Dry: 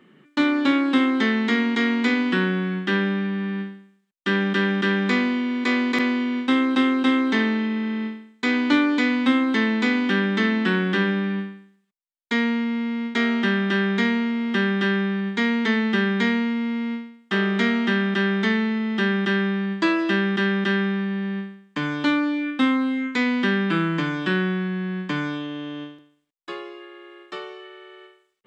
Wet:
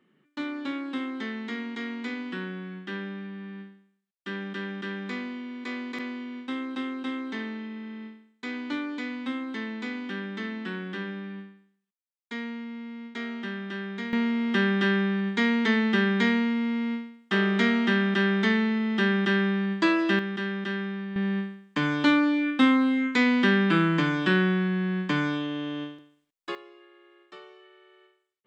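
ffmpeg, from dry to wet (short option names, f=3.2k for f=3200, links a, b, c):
-af "asetnsamples=n=441:p=0,asendcmd='14.13 volume volume -2dB;20.19 volume volume -9dB;21.16 volume volume 0dB;26.55 volume volume -12.5dB',volume=-13dB"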